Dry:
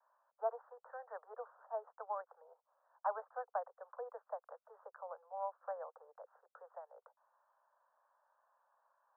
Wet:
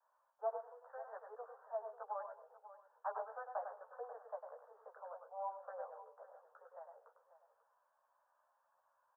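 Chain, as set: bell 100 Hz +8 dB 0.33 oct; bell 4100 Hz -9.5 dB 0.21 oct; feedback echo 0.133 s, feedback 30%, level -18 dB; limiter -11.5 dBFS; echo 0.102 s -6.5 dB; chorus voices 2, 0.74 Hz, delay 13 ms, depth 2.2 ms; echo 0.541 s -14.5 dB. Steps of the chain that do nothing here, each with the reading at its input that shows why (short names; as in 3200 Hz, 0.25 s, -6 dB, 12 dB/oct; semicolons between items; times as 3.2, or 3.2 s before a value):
bell 100 Hz: input band starts at 380 Hz; bell 4100 Hz: input band ends at 1700 Hz; limiter -11.5 dBFS: input peak -25.0 dBFS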